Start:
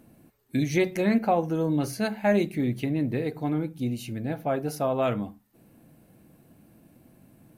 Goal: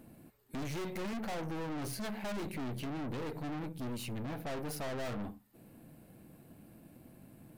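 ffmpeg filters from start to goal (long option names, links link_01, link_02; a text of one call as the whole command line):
ffmpeg -i in.wav -af "equalizer=frequency=6000:width=6.6:gain=-6,aeval=exprs='(tanh(89.1*val(0)+0.5)-tanh(0.5))/89.1':channel_layout=same,volume=1.5dB" out.wav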